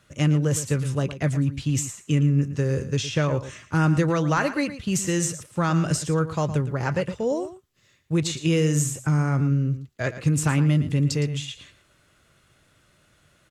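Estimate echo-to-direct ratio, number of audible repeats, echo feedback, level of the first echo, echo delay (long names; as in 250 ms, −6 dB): −13.0 dB, 1, repeats not evenly spaced, −13.0 dB, 113 ms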